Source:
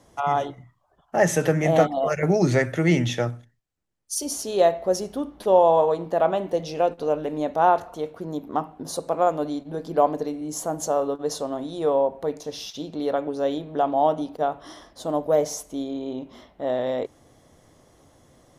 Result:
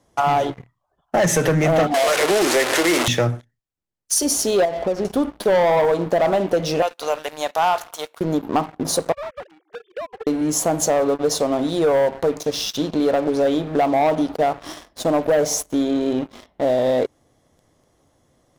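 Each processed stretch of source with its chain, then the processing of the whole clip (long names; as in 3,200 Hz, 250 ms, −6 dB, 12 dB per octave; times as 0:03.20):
0:01.94–0:03.08: linear delta modulator 64 kbit/s, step −18.5 dBFS + high-pass filter 320 Hz 24 dB per octave
0:04.65–0:05.05: low-pass filter 2,100 Hz + downward compressor 3 to 1, threshold −29 dBFS
0:06.82–0:08.21: high-pass filter 940 Hz + high-shelf EQ 4,300 Hz +10 dB
0:09.12–0:10.27: three sine waves on the formant tracks + Bessel high-pass filter 860 Hz, order 4 + downward compressor 8 to 1, threshold −37 dBFS
whole clip: leveller curve on the samples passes 3; downward compressor 3 to 1, threshold −16 dBFS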